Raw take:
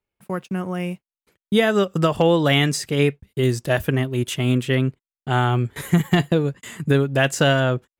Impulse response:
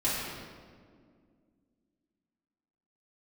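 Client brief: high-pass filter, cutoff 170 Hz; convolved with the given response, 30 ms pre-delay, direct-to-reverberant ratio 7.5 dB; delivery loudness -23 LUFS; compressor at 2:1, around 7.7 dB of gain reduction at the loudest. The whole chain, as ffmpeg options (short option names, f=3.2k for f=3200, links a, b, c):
-filter_complex "[0:a]highpass=170,acompressor=threshold=-27dB:ratio=2,asplit=2[a][b];[1:a]atrim=start_sample=2205,adelay=30[c];[b][c]afir=irnorm=-1:irlink=0,volume=-17dB[d];[a][d]amix=inputs=2:normalize=0,volume=4dB"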